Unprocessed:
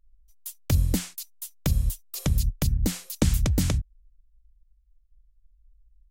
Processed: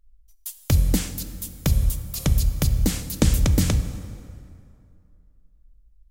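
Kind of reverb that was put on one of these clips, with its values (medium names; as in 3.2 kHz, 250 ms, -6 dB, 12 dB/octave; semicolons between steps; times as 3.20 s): plate-style reverb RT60 2.5 s, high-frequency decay 0.65×, DRR 9.5 dB; trim +3.5 dB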